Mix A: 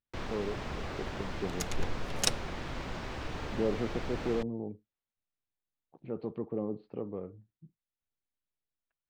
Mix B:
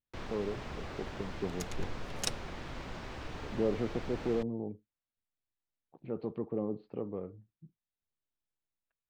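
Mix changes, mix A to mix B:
first sound -4.0 dB; second sound -6.0 dB

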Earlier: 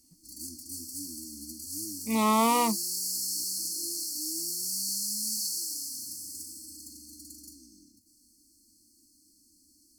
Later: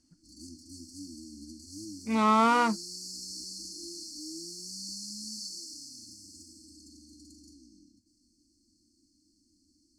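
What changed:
speech: remove Butterworth band-stop 1500 Hz, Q 2.1; master: add air absorption 110 m

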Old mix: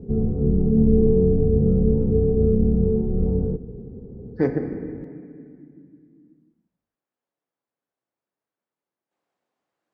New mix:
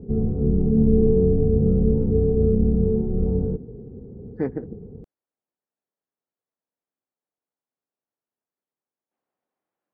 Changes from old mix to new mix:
speech: add air absorption 300 m; reverb: off

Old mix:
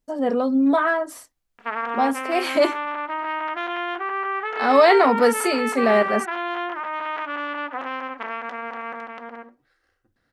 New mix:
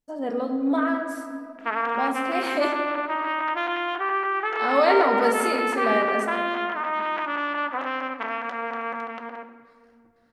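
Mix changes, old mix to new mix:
speech -9.0 dB; reverb: on, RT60 2.2 s

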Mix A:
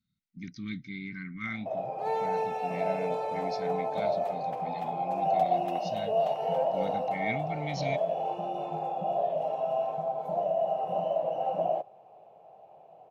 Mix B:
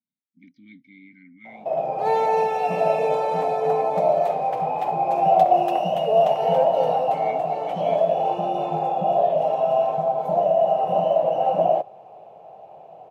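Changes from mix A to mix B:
speech: add vowel filter i; background +9.5 dB

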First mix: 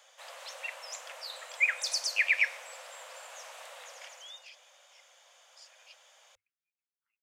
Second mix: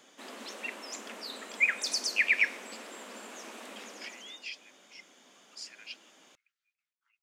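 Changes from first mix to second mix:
speech +11.5 dB; master: remove Chebyshev band-stop 100–510 Hz, order 5

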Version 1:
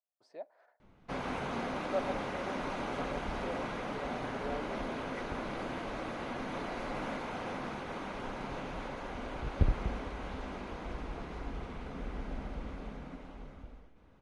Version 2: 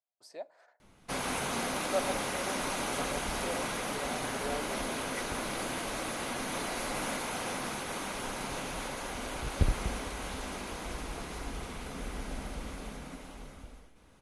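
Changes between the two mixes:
speech: send on; master: remove tape spacing loss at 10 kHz 27 dB

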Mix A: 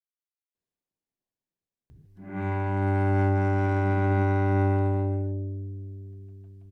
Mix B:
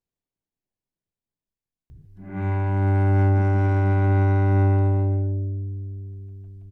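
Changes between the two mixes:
speech: entry -0.55 s; master: add low shelf 100 Hz +12 dB

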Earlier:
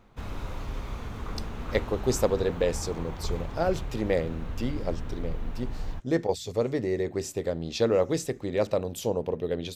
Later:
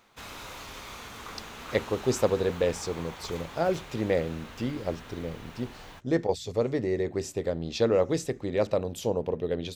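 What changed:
background: add tilt +4 dB/oct; master: add high shelf 10000 Hz -8 dB

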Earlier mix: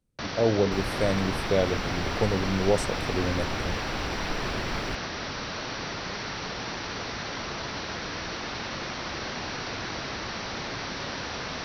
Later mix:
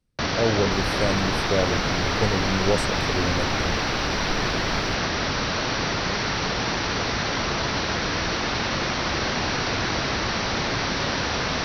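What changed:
first sound +8.5 dB; master: add low shelf 130 Hz +3.5 dB

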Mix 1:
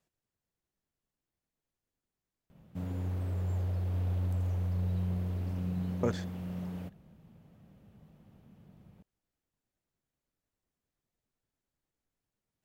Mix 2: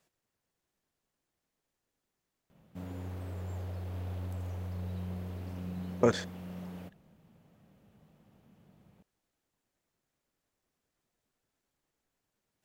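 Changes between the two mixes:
speech +8.0 dB; master: add low shelf 200 Hz -8.5 dB

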